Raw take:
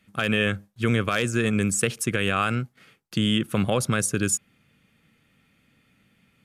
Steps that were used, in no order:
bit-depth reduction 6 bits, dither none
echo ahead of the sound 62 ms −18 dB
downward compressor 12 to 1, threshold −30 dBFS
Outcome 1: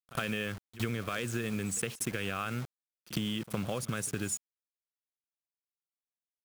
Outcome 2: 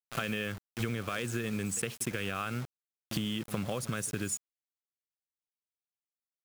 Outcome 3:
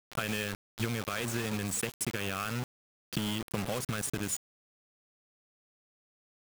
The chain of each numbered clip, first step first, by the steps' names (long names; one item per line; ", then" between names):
bit-depth reduction, then downward compressor, then echo ahead of the sound
echo ahead of the sound, then bit-depth reduction, then downward compressor
downward compressor, then echo ahead of the sound, then bit-depth reduction